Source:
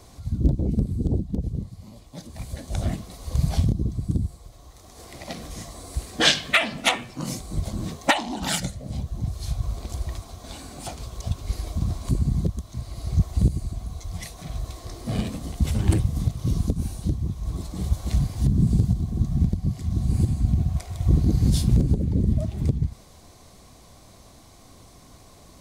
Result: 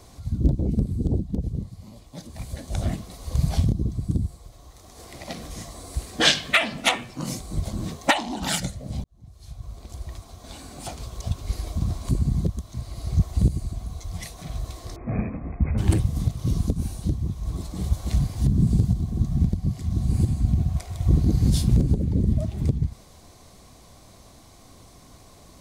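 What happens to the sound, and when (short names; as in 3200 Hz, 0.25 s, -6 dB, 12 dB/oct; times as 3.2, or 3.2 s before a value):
9.04–10.95 fade in
14.96–15.78 brick-wall FIR low-pass 2600 Hz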